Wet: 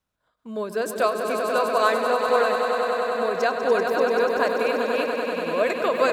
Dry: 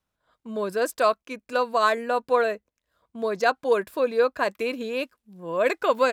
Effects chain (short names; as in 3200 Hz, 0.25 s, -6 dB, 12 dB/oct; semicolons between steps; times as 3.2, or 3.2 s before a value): swelling echo 97 ms, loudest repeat 5, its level -8.5 dB; ending taper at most 120 dB/s